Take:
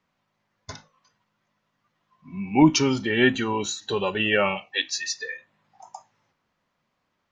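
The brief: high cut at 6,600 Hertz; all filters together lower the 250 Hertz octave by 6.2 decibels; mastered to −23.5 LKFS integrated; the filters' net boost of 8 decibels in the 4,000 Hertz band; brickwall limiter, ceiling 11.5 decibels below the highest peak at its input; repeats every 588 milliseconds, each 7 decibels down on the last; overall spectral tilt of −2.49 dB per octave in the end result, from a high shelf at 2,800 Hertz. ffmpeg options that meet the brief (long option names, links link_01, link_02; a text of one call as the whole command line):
ffmpeg -i in.wav -af "lowpass=6600,equalizer=frequency=250:width_type=o:gain=-8.5,highshelf=frequency=2800:gain=4.5,equalizer=frequency=4000:width_type=o:gain=7.5,alimiter=limit=-15.5dB:level=0:latency=1,aecho=1:1:588|1176|1764|2352|2940:0.447|0.201|0.0905|0.0407|0.0183,volume=2dB" out.wav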